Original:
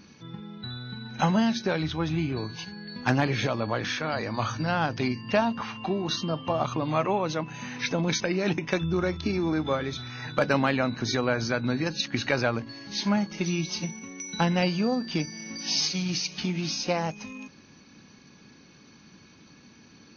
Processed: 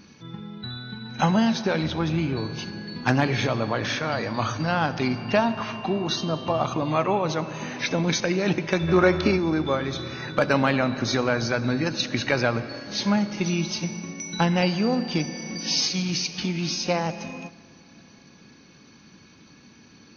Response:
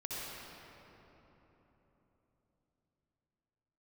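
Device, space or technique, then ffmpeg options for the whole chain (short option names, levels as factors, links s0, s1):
keyed gated reverb: -filter_complex "[0:a]asplit=3[s0][s1][s2];[1:a]atrim=start_sample=2205[s3];[s1][s3]afir=irnorm=-1:irlink=0[s4];[s2]apad=whole_len=889134[s5];[s4][s5]sidechaingate=range=0.251:threshold=0.00794:ratio=16:detection=peak,volume=0.237[s6];[s0][s6]amix=inputs=2:normalize=0,asplit=3[s7][s8][s9];[s7]afade=t=out:st=8.87:d=0.02[s10];[s8]equalizer=f=1000:w=0.32:g=9,afade=t=in:st=8.87:d=0.02,afade=t=out:st=9.35:d=0.02[s11];[s9]afade=t=in:st=9.35:d=0.02[s12];[s10][s11][s12]amix=inputs=3:normalize=0,volume=1.19"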